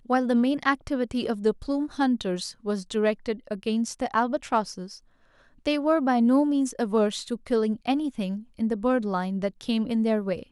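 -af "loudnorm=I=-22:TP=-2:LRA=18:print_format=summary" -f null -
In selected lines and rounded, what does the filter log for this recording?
Input Integrated:    -26.3 LUFS
Input True Peak:      -9.3 dBTP
Input LRA:             2.6 LU
Input Threshold:     -36.5 LUFS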